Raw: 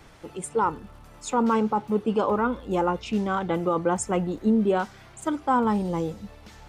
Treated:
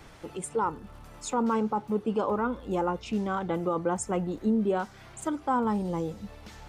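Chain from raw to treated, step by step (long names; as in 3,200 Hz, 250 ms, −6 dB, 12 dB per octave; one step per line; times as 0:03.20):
dynamic equaliser 2,800 Hz, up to −3 dB, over −40 dBFS, Q 0.88
in parallel at 0 dB: downward compressor, threshold −36 dBFS, peak gain reduction 17 dB
on the sum: level −5.5 dB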